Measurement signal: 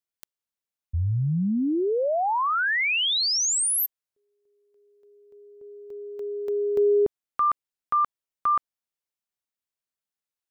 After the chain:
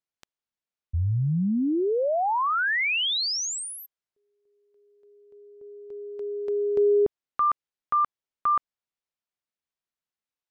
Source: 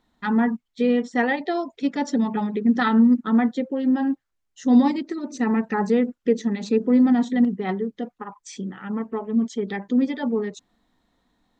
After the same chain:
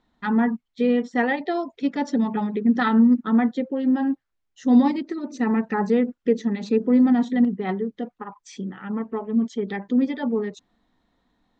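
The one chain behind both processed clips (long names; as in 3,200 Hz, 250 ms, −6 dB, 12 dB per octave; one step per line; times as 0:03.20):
high-frequency loss of the air 80 metres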